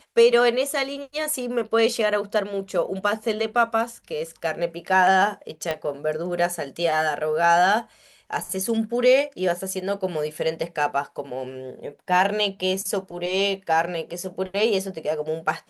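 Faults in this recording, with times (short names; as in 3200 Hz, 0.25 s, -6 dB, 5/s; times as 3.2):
5.71 pop -12 dBFS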